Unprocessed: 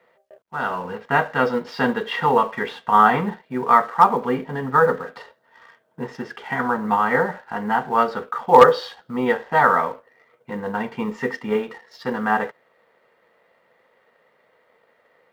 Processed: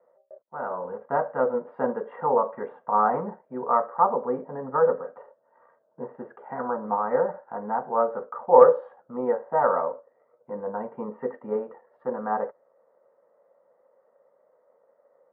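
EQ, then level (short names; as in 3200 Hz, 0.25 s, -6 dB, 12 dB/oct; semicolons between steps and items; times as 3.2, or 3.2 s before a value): HPF 280 Hz 6 dB/oct; LPF 1200 Hz 24 dB/oct; bell 560 Hz +13 dB 0.29 oct; -6.0 dB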